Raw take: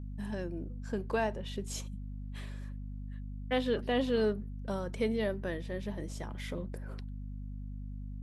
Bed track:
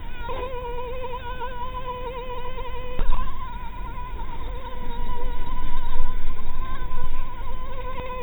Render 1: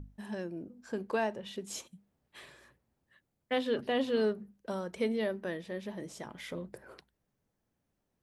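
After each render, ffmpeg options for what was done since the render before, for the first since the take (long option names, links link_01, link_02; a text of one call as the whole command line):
ffmpeg -i in.wav -af "bandreject=frequency=50:width_type=h:width=6,bandreject=frequency=100:width_type=h:width=6,bandreject=frequency=150:width_type=h:width=6,bandreject=frequency=200:width_type=h:width=6,bandreject=frequency=250:width_type=h:width=6" out.wav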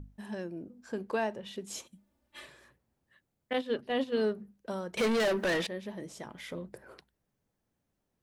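ffmpeg -i in.wav -filter_complex "[0:a]asettb=1/sr,asplit=3[link_01][link_02][link_03];[link_01]atrim=end=1.924[link_04];[link_02]atrim=start=1.92:end=2.47,asetpts=PTS-STARTPTS,afade=type=in:duration=0.004:curve=qsin,afade=type=out:start_time=0.546:duration=0.004:curve=qsin,aecho=1:1:3.4:0.98,atrim=end_sample=24255[link_05];[link_03]atrim=start=2.466[link_06];[link_04][link_05]acrossfade=duration=0.004:curve1=hsin:curve2=qsin[link_07];[link_07][link_06]acrossfade=duration=0.004:curve1=qsin:curve2=hsin,asettb=1/sr,asplit=3[link_08][link_09][link_10];[link_08]atrim=end=3.534[link_11];[link_09]atrim=start=3.53:end=4.23,asetpts=PTS-STARTPTS,afade=type=in:duration=0.004:curve=qsin,afade=type=out:start_time=0.696:duration=0.004:curve=qsin,agate=range=-8dB:threshold=-32dB:ratio=16:release=100:detection=peak[link_12];[link_10]atrim=start=4.226[link_13];[link_11][link_12]acrossfade=duration=0.004:curve1=hsin:curve2=qsin[link_14];[link_14][link_13]acrossfade=duration=0.004:curve1=qsin:curve2=hsin,asettb=1/sr,asplit=3[link_15][link_16][link_17];[link_15]atrim=end=4.974[link_18];[link_16]atrim=start=4.97:end=5.67,asetpts=PTS-STARTPTS,afade=type=in:duration=0.004:curve=qsin,afade=type=out:start_time=0.696:duration=0.004:curve=qsin,asplit=2[link_19][link_20];[link_20]highpass=frequency=720:poles=1,volume=29dB,asoftclip=type=tanh:threshold=-21.5dB[link_21];[link_19][link_21]amix=inputs=2:normalize=0,lowpass=frequency=7500:poles=1,volume=-6dB[link_22];[link_17]atrim=start=5.666[link_23];[link_18][link_22]acrossfade=duration=0.004:curve1=hsin:curve2=qsin[link_24];[link_24][link_23]acrossfade=duration=0.004:curve1=qsin:curve2=hsin" out.wav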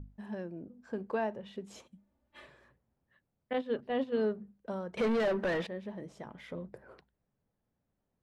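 ffmpeg -i in.wav -af "lowpass=frequency=1300:poles=1,equalizer=frequency=330:width_type=o:width=0.48:gain=-3.5" out.wav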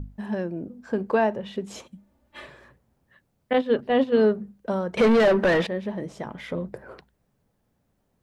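ffmpeg -i in.wav -af "volume=11.5dB" out.wav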